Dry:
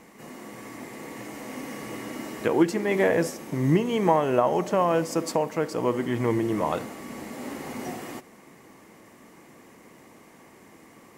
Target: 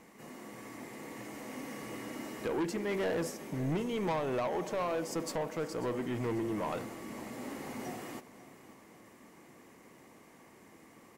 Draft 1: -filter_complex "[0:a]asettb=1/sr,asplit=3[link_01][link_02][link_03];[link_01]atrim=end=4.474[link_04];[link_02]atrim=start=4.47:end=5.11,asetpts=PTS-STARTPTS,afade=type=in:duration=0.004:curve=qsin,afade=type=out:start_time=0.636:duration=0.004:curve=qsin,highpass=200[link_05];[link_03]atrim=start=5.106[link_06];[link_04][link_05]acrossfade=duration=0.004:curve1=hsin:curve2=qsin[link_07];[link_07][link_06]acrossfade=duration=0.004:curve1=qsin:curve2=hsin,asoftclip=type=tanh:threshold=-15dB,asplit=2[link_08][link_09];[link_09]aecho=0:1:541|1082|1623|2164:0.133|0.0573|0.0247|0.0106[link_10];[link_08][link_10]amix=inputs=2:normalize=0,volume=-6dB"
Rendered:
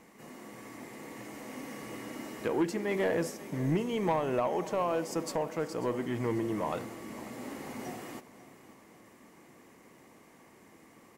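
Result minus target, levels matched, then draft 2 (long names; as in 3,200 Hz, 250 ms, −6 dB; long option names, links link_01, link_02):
soft clipping: distortion −8 dB
-filter_complex "[0:a]asettb=1/sr,asplit=3[link_01][link_02][link_03];[link_01]atrim=end=4.474[link_04];[link_02]atrim=start=4.47:end=5.11,asetpts=PTS-STARTPTS,afade=type=in:duration=0.004:curve=qsin,afade=type=out:start_time=0.636:duration=0.004:curve=qsin,highpass=200[link_05];[link_03]atrim=start=5.106[link_06];[link_04][link_05]acrossfade=duration=0.004:curve1=hsin:curve2=qsin[link_07];[link_07][link_06]acrossfade=duration=0.004:curve1=qsin:curve2=hsin,asoftclip=type=tanh:threshold=-22.5dB,asplit=2[link_08][link_09];[link_09]aecho=0:1:541|1082|1623|2164:0.133|0.0573|0.0247|0.0106[link_10];[link_08][link_10]amix=inputs=2:normalize=0,volume=-6dB"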